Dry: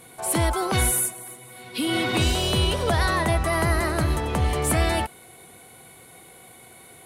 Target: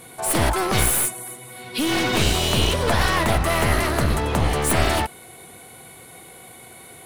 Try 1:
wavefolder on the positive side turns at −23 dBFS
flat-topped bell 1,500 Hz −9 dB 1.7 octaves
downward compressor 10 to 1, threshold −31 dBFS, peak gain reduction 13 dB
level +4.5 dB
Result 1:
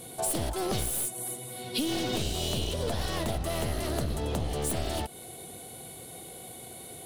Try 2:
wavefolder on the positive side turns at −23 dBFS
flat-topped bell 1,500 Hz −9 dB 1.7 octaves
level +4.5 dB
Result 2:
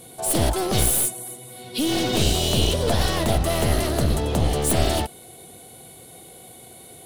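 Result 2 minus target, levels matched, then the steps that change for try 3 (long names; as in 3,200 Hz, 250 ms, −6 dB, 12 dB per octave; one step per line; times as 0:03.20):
2,000 Hz band −7.0 dB
remove: flat-topped bell 1,500 Hz −9 dB 1.7 octaves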